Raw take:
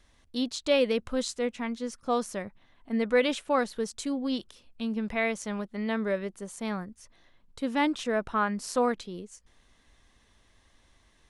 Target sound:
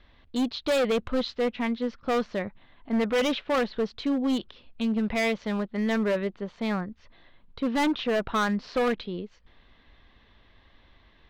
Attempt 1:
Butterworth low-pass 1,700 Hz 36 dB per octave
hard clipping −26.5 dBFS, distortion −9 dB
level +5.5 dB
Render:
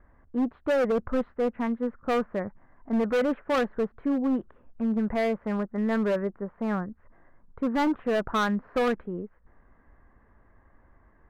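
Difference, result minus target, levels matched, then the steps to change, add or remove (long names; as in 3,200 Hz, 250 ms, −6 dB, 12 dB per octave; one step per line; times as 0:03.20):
4,000 Hz band −8.0 dB
change: Butterworth low-pass 4,100 Hz 36 dB per octave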